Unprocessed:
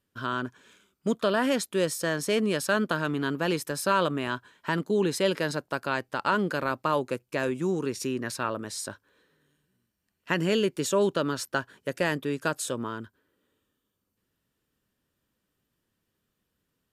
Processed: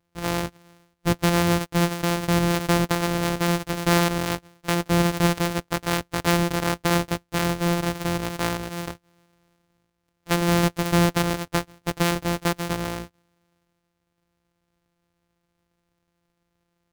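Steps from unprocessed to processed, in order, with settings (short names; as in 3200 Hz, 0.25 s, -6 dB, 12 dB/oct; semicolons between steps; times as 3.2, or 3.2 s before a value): sample sorter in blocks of 256 samples; gain +4.5 dB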